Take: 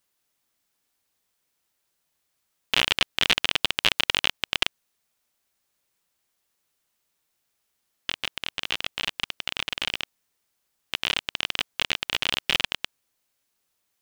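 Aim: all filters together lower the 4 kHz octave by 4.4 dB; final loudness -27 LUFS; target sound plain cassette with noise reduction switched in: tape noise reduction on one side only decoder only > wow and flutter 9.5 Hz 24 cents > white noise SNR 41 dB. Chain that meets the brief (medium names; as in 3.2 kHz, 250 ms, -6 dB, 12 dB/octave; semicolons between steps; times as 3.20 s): peaking EQ 4 kHz -6.5 dB; tape noise reduction on one side only decoder only; wow and flutter 9.5 Hz 24 cents; white noise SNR 41 dB; trim +2 dB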